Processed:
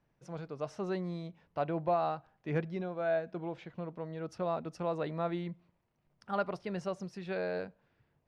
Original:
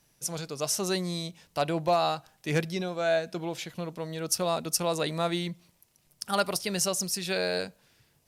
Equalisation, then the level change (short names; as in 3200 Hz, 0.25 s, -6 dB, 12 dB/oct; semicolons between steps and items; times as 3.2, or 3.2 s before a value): LPF 1600 Hz 12 dB/oct; -5.0 dB